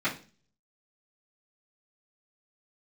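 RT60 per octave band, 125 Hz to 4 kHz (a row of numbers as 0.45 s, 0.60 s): 0.65 s, 0.50 s, 0.40 s, 0.35 s, 0.35 s, 0.40 s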